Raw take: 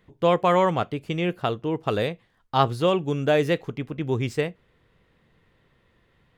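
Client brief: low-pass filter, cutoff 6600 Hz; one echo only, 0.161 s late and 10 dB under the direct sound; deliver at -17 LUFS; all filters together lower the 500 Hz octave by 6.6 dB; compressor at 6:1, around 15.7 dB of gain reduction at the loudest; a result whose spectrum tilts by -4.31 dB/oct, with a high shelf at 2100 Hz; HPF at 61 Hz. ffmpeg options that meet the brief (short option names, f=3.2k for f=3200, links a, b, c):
-af "highpass=61,lowpass=6.6k,equalizer=f=500:t=o:g=-8.5,highshelf=f=2.1k:g=6,acompressor=threshold=-33dB:ratio=6,aecho=1:1:161:0.316,volume=20dB"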